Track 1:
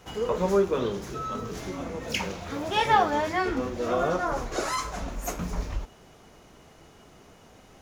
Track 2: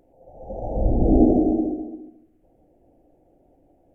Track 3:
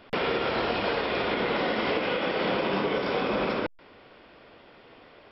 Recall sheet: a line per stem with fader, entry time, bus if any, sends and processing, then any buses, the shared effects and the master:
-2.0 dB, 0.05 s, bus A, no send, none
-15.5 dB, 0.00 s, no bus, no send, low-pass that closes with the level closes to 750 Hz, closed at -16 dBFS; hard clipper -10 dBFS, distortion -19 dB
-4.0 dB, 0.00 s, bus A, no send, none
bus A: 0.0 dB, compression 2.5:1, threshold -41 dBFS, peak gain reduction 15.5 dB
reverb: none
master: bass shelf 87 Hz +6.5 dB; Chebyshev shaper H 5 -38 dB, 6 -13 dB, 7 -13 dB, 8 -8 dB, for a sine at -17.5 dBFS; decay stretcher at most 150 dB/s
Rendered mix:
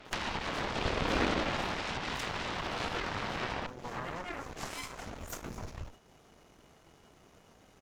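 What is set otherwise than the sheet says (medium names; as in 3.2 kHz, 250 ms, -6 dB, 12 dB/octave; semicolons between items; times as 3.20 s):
stem 2: missing low-pass that closes with the level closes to 750 Hz, closed at -16 dBFS; stem 3 -4.0 dB -> +4.5 dB; master: missing bass shelf 87 Hz +6.5 dB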